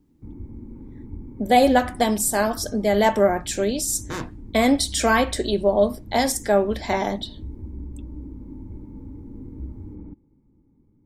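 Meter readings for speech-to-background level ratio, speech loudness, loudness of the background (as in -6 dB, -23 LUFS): 18.5 dB, -21.0 LUFS, -39.5 LUFS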